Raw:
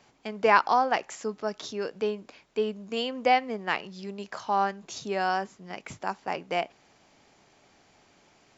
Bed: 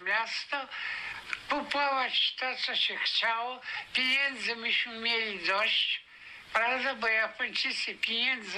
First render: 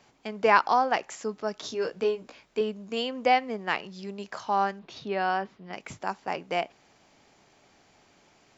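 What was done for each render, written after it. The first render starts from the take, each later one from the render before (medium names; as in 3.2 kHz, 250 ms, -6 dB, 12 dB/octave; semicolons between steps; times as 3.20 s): 1.62–2.61 s: doubling 17 ms -4 dB; 4.79–5.73 s: low-pass 4.2 kHz 24 dB/octave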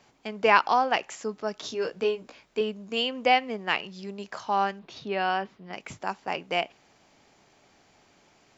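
dynamic bell 2.8 kHz, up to +7 dB, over -47 dBFS, Q 2.4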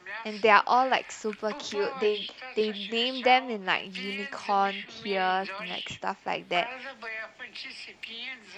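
add bed -9.5 dB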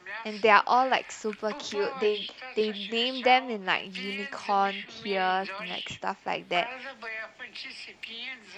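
no audible change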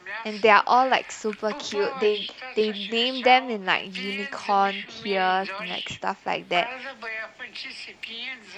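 trim +4 dB; peak limiter -3 dBFS, peak gain reduction 2 dB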